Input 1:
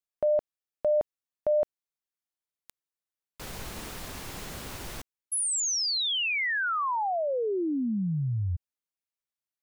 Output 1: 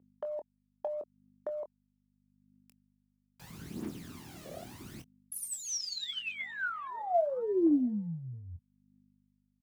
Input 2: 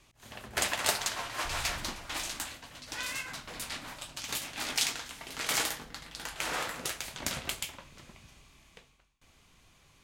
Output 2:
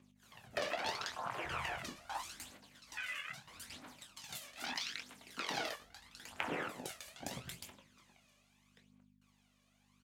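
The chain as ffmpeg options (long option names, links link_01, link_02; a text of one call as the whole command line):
ffmpeg -i in.wav -filter_complex "[0:a]afwtdn=0.0178,aeval=exprs='val(0)+0.000631*(sin(2*PI*50*n/s)+sin(2*PI*2*50*n/s)/2+sin(2*PI*3*50*n/s)/3+sin(2*PI*4*50*n/s)/4+sin(2*PI*5*50*n/s)/5)':channel_layout=same,acrossover=split=590[link_01][link_02];[link_01]alimiter=level_in=7.5dB:limit=-24dB:level=0:latency=1:release=185,volume=-7.5dB[link_03];[link_02]acompressor=threshold=-43dB:ratio=8:attack=4.9:release=105:knee=1:detection=peak[link_04];[link_03][link_04]amix=inputs=2:normalize=0,highpass=210,aphaser=in_gain=1:out_gain=1:delay=1.8:decay=0.64:speed=0.78:type=triangular,asplit=2[link_05][link_06];[link_06]adelay=24,volume=-10dB[link_07];[link_05][link_07]amix=inputs=2:normalize=0,volume=2dB" out.wav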